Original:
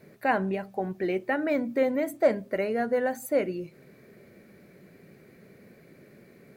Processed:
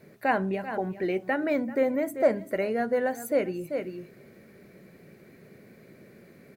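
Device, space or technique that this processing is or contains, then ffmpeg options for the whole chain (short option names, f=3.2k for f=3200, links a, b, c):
ducked delay: -filter_complex "[0:a]asplit=3[a][b][c];[b]adelay=388,volume=-5dB[d];[c]apad=whole_len=306623[e];[d][e]sidechaincompress=threshold=-44dB:ratio=8:attack=16:release=145[f];[a][f]amix=inputs=2:normalize=0,asettb=1/sr,asplit=3[g][h][i];[g]atrim=end=1.644[j];[h]atrim=start=1.64:end=2.35,asetpts=PTS-STARTPTS,afade=t=in:d=0.004:c=qsin,afade=t=out:st=0.706:d=0.004:c=qsin,equalizer=f=3.6k:t=o:w=0.84:g=-6[k];[i]atrim=start=2.346[l];[j][k]acrossfade=d=0.004:c1=hsin:c2=qsin[m];[m][l]acrossfade=d=0.004:c1=qsin:c2=hsin"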